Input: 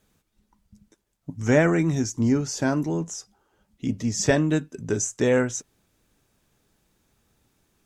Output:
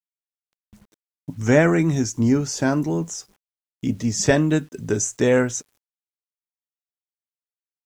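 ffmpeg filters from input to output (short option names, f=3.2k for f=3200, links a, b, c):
-af "agate=range=-12dB:threshold=-55dB:ratio=16:detection=peak,acrusher=bits=9:mix=0:aa=0.000001,volume=3dB"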